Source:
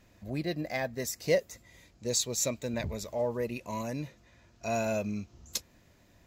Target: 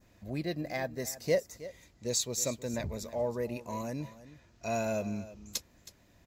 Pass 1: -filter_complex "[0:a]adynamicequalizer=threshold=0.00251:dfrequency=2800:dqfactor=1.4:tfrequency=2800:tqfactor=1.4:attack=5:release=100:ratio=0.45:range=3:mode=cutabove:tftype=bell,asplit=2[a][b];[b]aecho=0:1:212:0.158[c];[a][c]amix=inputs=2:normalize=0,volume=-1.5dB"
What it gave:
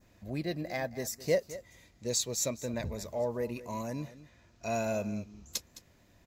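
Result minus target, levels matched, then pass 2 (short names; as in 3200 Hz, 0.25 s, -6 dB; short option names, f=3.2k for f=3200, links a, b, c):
echo 0.107 s early
-filter_complex "[0:a]adynamicequalizer=threshold=0.00251:dfrequency=2800:dqfactor=1.4:tfrequency=2800:tqfactor=1.4:attack=5:release=100:ratio=0.45:range=3:mode=cutabove:tftype=bell,asplit=2[a][b];[b]aecho=0:1:319:0.158[c];[a][c]amix=inputs=2:normalize=0,volume=-1.5dB"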